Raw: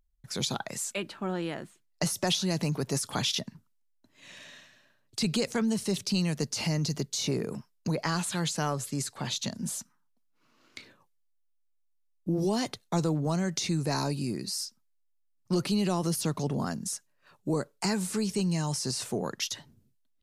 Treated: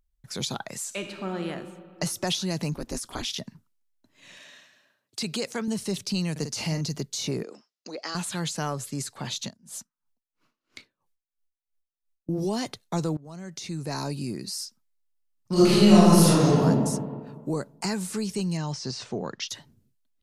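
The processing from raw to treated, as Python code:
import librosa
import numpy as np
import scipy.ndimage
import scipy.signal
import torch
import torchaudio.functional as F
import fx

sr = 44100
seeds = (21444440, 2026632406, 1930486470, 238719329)

y = fx.reverb_throw(x, sr, start_s=0.85, length_s=0.62, rt60_s=2.0, drr_db=5.0)
y = fx.ring_mod(y, sr, carrier_hz=110.0, at=(2.73, 3.37), fade=0.02)
y = fx.highpass(y, sr, hz=280.0, slope=6, at=(4.37, 5.68))
y = fx.doubler(y, sr, ms=50.0, db=-8.5, at=(6.31, 6.81))
y = fx.cabinet(y, sr, low_hz=330.0, low_slope=24, high_hz=6700.0, hz=(420.0, 630.0, 970.0, 1600.0, 2300.0, 4900.0), db=(-5, -3, -10, -5, -4, 3), at=(7.43, 8.15))
y = fx.tremolo_db(y, sr, hz=3.0, depth_db=26, at=(9.44, 12.29))
y = fx.reverb_throw(y, sr, start_s=15.52, length_s=1.09, rt60_s=1.7, drr_db=-11.5)
y = fx.lowpass(y, sr, hz=5800.0, slope=24, at=(18.57, 19.49))
y = fx.edit(y, sr, fx.fade_in_from(start_s=13.17, length_s=1.02, floor_db=-22.0), tone=tone)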